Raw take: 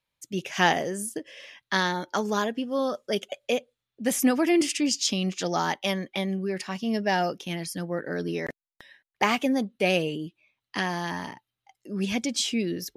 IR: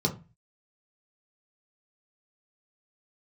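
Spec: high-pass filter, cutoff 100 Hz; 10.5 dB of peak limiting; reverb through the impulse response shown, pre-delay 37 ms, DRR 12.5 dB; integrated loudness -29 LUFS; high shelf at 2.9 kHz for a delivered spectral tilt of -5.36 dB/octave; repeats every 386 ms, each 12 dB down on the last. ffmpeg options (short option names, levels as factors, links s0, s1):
-filter_complex "[0:a]highpass=100,highshelf=f=2900:g=-9,alimiter=limit=0.126:level=0:latency=1,aecho=1:1:386|772|1158:0.251|0.0628|0.0157,asplit=2[s0][s1];[1:a]atrim=start_sample=2205,adelay=37[s2];[s1][s2]afir=irnorm=-1:irlink=0,volume=0.0891[s3];[s0][s3]amix=inputs=2:normalize=0,volume=1.06"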